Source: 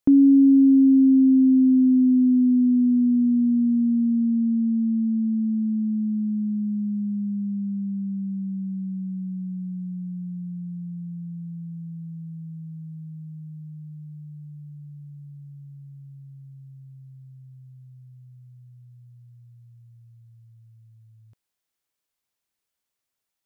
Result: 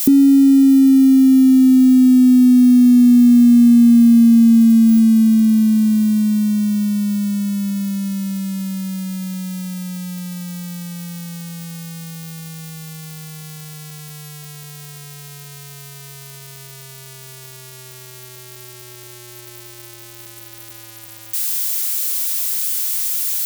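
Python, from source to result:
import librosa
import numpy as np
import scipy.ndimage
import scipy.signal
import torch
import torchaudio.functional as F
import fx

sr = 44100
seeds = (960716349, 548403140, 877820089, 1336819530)

y = x + 0.5 * 10.0 ** (-16.5 / 20.0) * np.diff(np.sign(x), prepend=np.sign(x[:1]))
y = fx.small_body(y, sr, hz=(230.0, 360.0), ring_ms=65, db=12)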